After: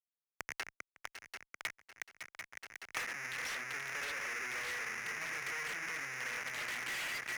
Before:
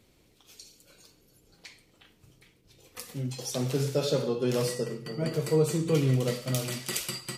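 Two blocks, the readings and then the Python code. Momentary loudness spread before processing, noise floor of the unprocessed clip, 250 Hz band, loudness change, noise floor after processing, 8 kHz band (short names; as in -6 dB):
10 LU, -64 dBFS, -26.5 dB, -11.0 dB, under -85 dBFS, -8.5 dB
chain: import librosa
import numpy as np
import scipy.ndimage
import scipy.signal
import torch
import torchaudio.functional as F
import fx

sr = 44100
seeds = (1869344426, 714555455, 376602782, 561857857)

p1 = fx.rider(x, sr, range_db=10, speed_s=0.5)
p2 = x + (p1 * 10.0 ** (2.5 / 20.0))
p3 = fx.schmitt(p2, sr, flips_db=-32.0)
p4 = fx.bandpass_q(p3, sr, hz=2000.0, q=2.7)
p5 = np.clip(p4, -10.0 ** (-40.0 / 20.0), 10.0 ** (-40.0 / 20.0))
p6 = p5 + fx.echo_swing(p5, sr, ms=740, ratio=3, feedback_pct=55, wet_db=-17, dry=0)
p7 = fx.band_squash(p6, sr, depth_pct=100)
y = p7 * 10.0 ** (3.0 / 20.0)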